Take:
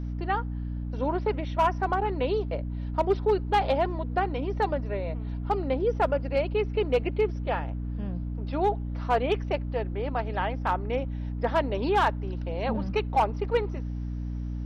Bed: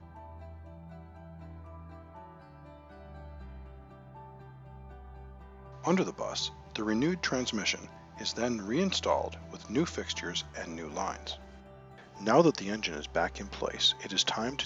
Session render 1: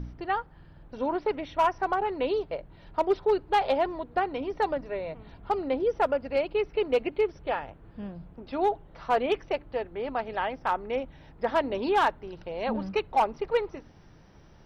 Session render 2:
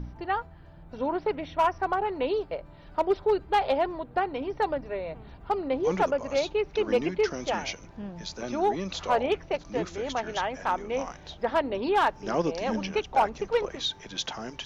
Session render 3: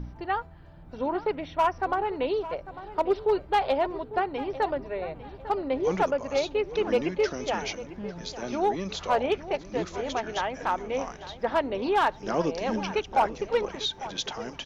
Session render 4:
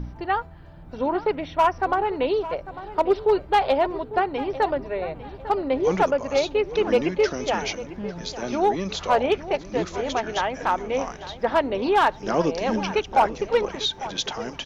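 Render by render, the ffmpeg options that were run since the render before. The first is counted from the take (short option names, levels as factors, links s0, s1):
-af "bandreject=f=60:t=h:w=4,bandreject=f=120:t=h:w=4,bandreject=f=180:t=h:w=4,bandreject=f=240:t=h:w=4,bandreject=f=300:t=h:w=4"
-filter_complex "[1:a]volume=0.596[s0];[0:a][s0]amix=inputs=2:normalize=0"
-filter_complex "[0:a]asplit=2[s0][s1];[s1]adelay=849,lowpass=f=3600:p=1,volume=0.188,asplit=2[s2][s3];[s3]adelay=849,lowpass=f=3600:p=1,volume=0.35,asplit=2[s4][s5];[s5]adelay=849,lowpass=f=3600:p=1,volume=0.35[s6];[s0][s2][s4][s6]amix=inputs=4:normalize=0"
-af "volume=1.68"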